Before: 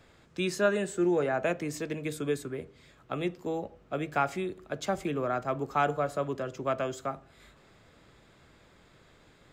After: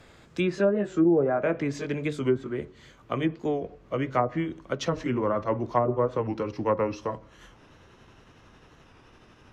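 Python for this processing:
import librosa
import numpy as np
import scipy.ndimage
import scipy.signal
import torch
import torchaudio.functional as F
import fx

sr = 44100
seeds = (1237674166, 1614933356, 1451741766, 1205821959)

y = fx.pitch_glide(x, sr, semitones=-5.0, runs='starting unshifted')
y = fx.env_lowpass_down(y, sr, base_hz=640.0, full_db=-23.0)
y = fx.record_warp(y, sr, rpm=45.0, depth_cents=100.0)
y = y * 10.0 ** (6.0 / 20.0)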